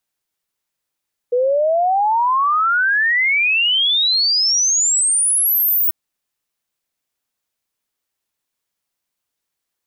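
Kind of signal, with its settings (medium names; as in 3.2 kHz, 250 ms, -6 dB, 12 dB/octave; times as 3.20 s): log sweep 480 Hz -> 16 kHz 4.59 s -13 dBFS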